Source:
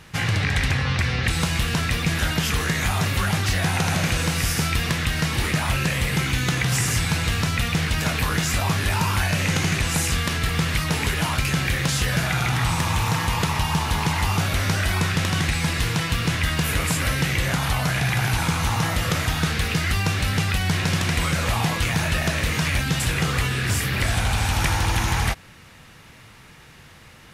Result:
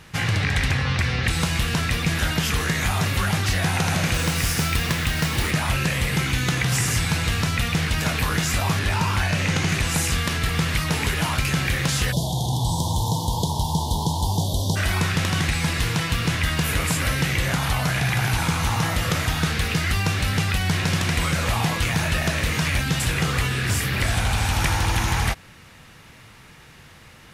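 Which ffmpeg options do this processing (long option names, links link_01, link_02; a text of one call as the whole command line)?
ffmpeg -i in.wav -filter_complex "[0:a]asettb=1/sr,asplit=3[link_01][link_02][link_03];[link_01]atrim=end=4.144[link_04];[link_02]atrim=start=4.14:end=5.51,asetpts=PTS-STARTPTS,afade=type=in:duration=0.004:curve=qsin,afade=type=out:start_time=1.366:duration=0.004:curve=qsin,acrusher=bits=3:mode=log:mix=0:aa=0.000001[link_05];[link_03]atrim=start=5.506[link_06];[link_04][link_05]acrossfade=duration=0.004:curve1=hsin:curve2=qsin[link_07];[link_07][link_06]acrossfade=duration=0.004:curve1=qsin:curve2=hsin,asettb=1/sr,asplit=3[link_08][link_09][link_10];[link_08]atrim=end=8.794[link_11];[link_09]atrim=start=8.79:end=9.69,asetpts=PTS-STARTPTS,afade=type=in:duration=0.004:curve=qsin,afade=type=out:start_time=0.896:duration=0.004:curve=qsin,equalizer=frequency=13000:width_type=o:width=1:gain=-7.5[link_12];[link_10]atrim=start=9.686[link_13];[link_11][link_12]acrossfade=duration=0.004:curve1=hsin:curve2=qsin[link_14];[link_14][link_13]acrossfade=duration=0.004:curve1=qsin:curve2=hsin,asplit=3[link_15][link_16][link_17];[link_15]afade=type=out:start_time=12.11:duration=0.02[link_18];[link_16]asuperstop=centerf=1800:order=20:qfactor=0.83,afade=type=in:start_time=12.11:duration=0.02,afade=type=out:start_time=14.75:duration=0.02[link_19];[link_17]afade=type=in:start_time=14.75:duration=0.02[link_20];[link_18][link_19][link_20]amix=inputs=3:normalize=0" out.wav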